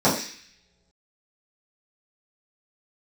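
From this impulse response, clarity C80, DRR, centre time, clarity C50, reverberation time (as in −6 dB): 9.5 dB, −11.0 dB, 33 ms, 6.5 dB, non-exponential decay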